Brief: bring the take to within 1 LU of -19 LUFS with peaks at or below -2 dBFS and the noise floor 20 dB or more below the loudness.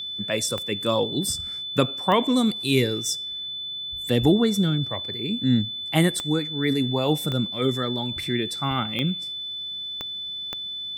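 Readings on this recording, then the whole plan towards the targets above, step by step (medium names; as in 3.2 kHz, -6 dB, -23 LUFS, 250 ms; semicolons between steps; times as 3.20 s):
clicks found 7; steady tone 3.5 kHz; tone level -30 dBFS; loudness -24.5 LUFS; peak level -5.0 dBFS; loudness target -19.0 LUFS
-> de-click; band-stop 3.5 kHz, Q 30; trim +5.5 dB; peak limiter -2 dBFS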